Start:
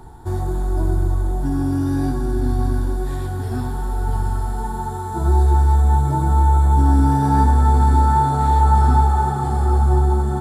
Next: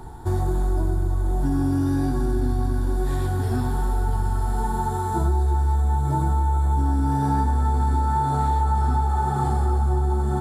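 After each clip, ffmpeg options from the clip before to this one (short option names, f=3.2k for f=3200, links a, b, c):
-af "acompressor=threshold=-20dB:ratio=6,volume=2dB"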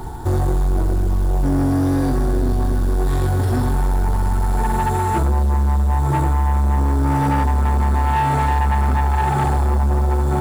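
-af "acrusher=bits=6:mode=log:mix=0:aa=0.000001,asoftclip=type=tanh:threshold=-22.5dB,volume=9dB"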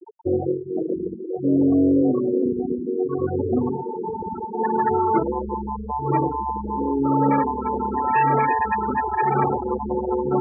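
-af "highpass=240,equalizer=f=460:t=q:w=4:g=5,equalizer=f=780:t=q:w=4:g=-7,equalizer=f=2.4k:t=q:w=4:g=8,lowpass=f=7.6k:w=0.5412,lowpass=f=7.6k:w=1.3066,afftfilt=real='re*gte(hypot(re,im),0.141)':imag='im*gte(hypot(re,im),0.141)':win_size=1024:overlap=0.75,volume=4dB"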